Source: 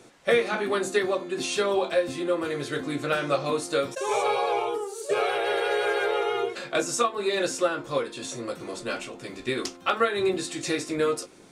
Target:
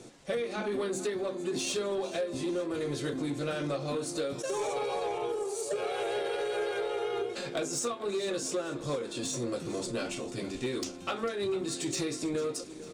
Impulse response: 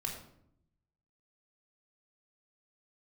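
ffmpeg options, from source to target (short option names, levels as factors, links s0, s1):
-filter_complex "[0:a]lowpass=9600,equalizer=f=1500:t=o:w=2.7:g=-9.5,acompressor=threshold=0.0224:ratio=8,atempo=0.89,asoftclip=type=tanh:threshold=0.0316,asplit=2[s0][s1];[s1]aecho=0:1:447|894|1341|1788|2235:0.158|0.0888|0.0497|0.0278|0.0156[s2];[s0][s2]amix=inputs=2:normalize=0,volume=1.88"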